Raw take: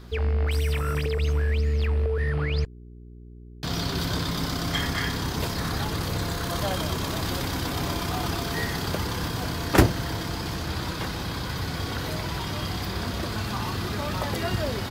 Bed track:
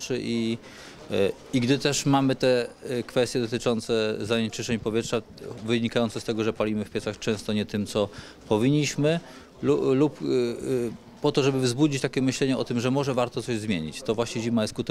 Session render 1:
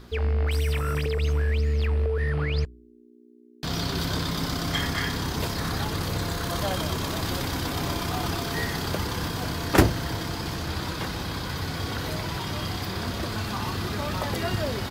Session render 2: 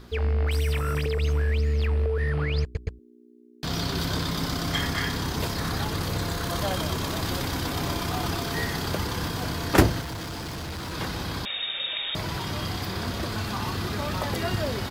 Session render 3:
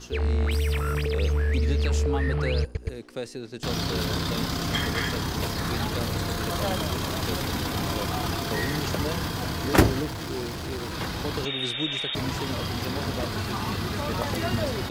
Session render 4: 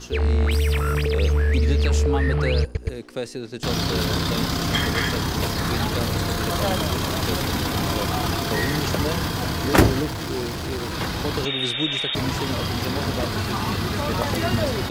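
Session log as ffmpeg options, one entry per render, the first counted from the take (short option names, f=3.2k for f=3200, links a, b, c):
-af "bandreject=f=60:t=h:w=4,bandreject=f=120:t=h:w=4,bandreject=f=180:t=h:w=4"
-filter_complex "[0:a]asettb=1/sr,asplit=3[a][b][c];[a]atrim=end=10.014[d];[b]atrim=start=10.01:end=10.93,asetpts=PTS-STARTPTS,afade=t=in:d=0.004:c=qsin,afade=t=out:st=0.916:d=0.004:c=qsin,volume=31.5dB,asoftclip=hard,volume=-31.5dB[e];[c]atrim=start=10.926[f];[d][e]acrossfade=d=0.004:c1=hsin:c2=qsin[g];[g][f]acrossfade=d=0.004:c1=qsin:c2=hsin,asettb=1/sr,asplit=3[h][i][j];[h]atrim=end=11.454[k];[i]atrim=start=11.45:end=12.15,asetpts=PTS-STARTPTS,afade=t=in:d=0.004:c=qsin,afade=t=out:st=0.696:d=0.004:c=qsin,lowpass=f=3.2k:t=q:w=0.5098,lowpass=f=3.2k:t=q:w=0.6013,lowpass=f=3.2k:t=q:w=0.9,lowpass=f=3.2k:t=q:w=2.563,afreqshift=-3800[l];[j]atrim=start=12.146[m];[k][l]acrossfade=d=0.004:c1=hsin:c2=qsin[n];[n][m]acrossfade=d=0.004:c1=qsin:c2=hsin,asplit=4[o][p][q][r];[o]atrim=end=2.752[s];[p]atrim=start=2.628:end=2.752[t];[q]atrim=start=2.628:end=2.752[u];[r]atrim=start=2.988[v];[s][t]acrossfade=d=0.004:c1=hsin:c2=hsin[w];[w][u]acrossfade=d=0.004:c1=hsin:c2=hsin[x];[x][v]acrossfade=d=0.004:c1=hsin:c2=hsin"
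-filter_complex "[1:a]volume=-10.5dB[a];[0:a][a]amix=inputs=2:normalize=0"
-af "volume=4.5dB,alimiter=limit=-2dB:level=0:latency=1"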